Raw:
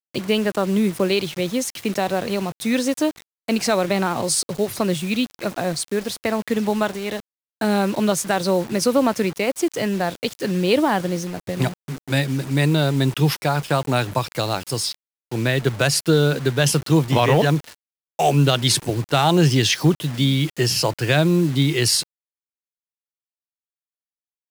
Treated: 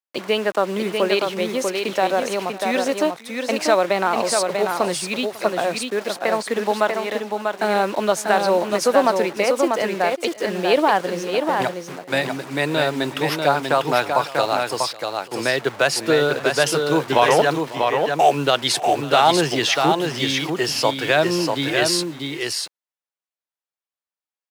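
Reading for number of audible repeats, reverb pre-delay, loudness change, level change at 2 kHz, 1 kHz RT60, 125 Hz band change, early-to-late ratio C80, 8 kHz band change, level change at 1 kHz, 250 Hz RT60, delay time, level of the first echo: 2, none, +0.5 dB, +3.5 dB, none, -11.5 dB, none, -2.5 dB, +5.5 dB, none, 0.548 s, -19.5 dB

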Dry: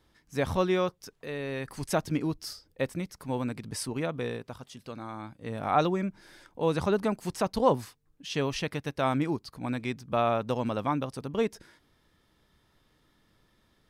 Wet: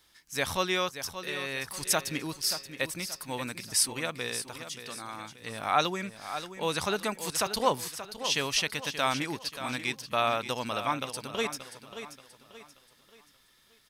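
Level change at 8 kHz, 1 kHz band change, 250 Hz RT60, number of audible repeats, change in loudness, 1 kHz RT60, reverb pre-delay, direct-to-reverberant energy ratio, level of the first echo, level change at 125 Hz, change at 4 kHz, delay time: +12.0 dB, 0.0 dB, none, 3, 0.0 dB, none, none, none, -11.0 dB, -7.5 dB, +9.5 dB, 0.58 s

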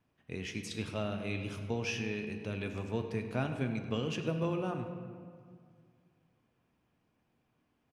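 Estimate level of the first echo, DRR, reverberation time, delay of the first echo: -15.5 dB, 5.0 dB, 2.1 s, 99 ms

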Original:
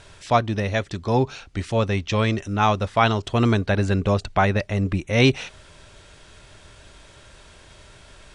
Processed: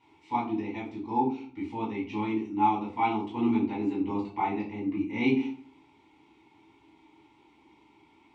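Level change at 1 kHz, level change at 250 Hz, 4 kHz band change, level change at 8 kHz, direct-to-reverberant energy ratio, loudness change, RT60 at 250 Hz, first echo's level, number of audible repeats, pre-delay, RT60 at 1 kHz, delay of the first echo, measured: -5.0 dB, -3.5 dB, -17.5 dB, under -25 dB, -7.0 dB, -8.0 dB, 0.65 s, none, none, 4 ms, 0.40 s, none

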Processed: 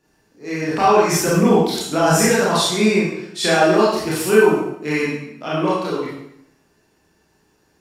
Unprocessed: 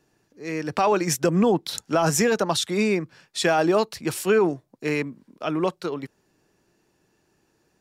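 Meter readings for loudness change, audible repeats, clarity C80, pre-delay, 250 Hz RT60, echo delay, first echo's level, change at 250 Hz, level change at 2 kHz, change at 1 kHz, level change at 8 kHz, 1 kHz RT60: +6.0 dB, none, 3.5 dB, 25 ms, 0.80 s, none, none, +5.5 dB, +7.5 dB, +7.0 dB, +5.5 dB, 0.75 s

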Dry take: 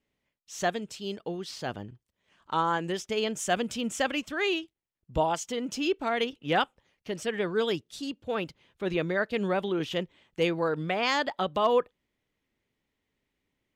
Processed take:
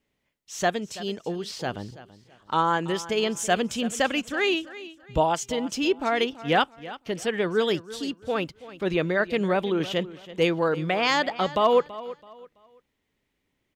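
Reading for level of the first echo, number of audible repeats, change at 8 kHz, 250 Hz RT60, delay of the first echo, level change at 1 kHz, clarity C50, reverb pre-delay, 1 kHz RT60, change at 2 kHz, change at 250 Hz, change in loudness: -16.5 dB, 2, +4.0 dB, none, 0.331 s, +4.0 dB, none, none, none, +4.0 dB, +4.0 dB, +4.0 dB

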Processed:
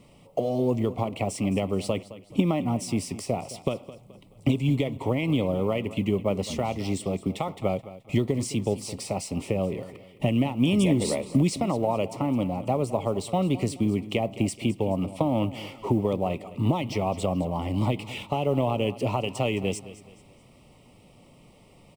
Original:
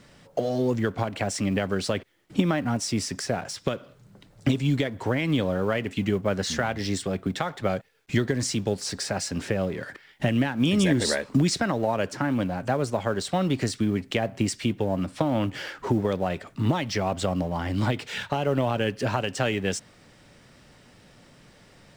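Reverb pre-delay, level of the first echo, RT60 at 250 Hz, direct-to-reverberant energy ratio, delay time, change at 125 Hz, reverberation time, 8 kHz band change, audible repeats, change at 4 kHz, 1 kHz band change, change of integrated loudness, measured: none, -16.0 dB, none, none, 0.214 s, 0.0 dB, none, -4.5 dB, 3, -4.5 dB, -0.5 dB, -0.5 dB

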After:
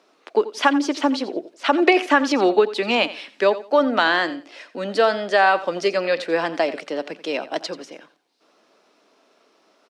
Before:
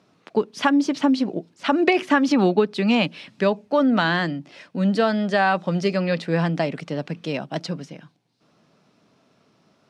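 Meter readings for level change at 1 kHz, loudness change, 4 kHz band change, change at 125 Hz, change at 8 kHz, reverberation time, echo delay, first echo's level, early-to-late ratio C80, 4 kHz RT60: +3.5 dB, +1.5 dB, +3.5 dB, -16.0 dB, n/a, none, 87 ms, -15.5 dB, none, none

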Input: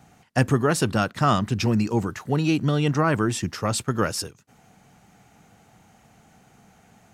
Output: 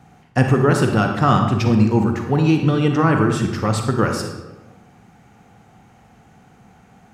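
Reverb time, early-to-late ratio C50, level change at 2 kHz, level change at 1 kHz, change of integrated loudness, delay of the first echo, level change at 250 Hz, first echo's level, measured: 1.2 s, 5.5 dB, +4.0 dB, +5.0 dB, +5.5 dB, none, +6.5 dB, none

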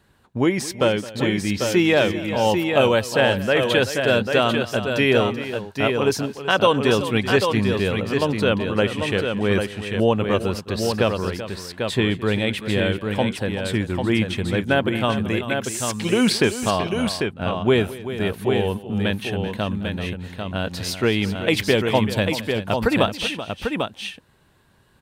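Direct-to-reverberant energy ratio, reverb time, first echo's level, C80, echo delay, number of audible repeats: none, none, -18.5 dB, none, 0.215 s, 3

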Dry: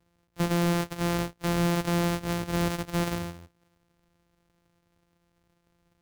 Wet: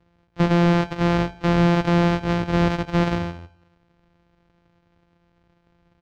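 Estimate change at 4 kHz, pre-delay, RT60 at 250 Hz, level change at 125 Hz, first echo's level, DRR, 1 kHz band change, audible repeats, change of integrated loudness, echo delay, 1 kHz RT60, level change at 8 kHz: +3.5 dB, none, none, +8.0 dB, -19.5 dB, none, +8.0 dB, 3, +7.5 dB, 80 ms, none, n/a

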